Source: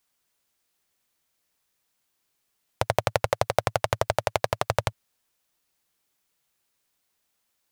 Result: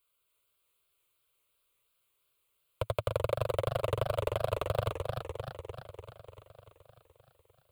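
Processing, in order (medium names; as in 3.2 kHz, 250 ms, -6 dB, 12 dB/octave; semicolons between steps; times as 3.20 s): saturation -16.5 dBFS, distortion -7 dB; static phaser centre 1.2 kHz, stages 8; modulated delay 300 ms, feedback 64%, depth 184 cents, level -5 dB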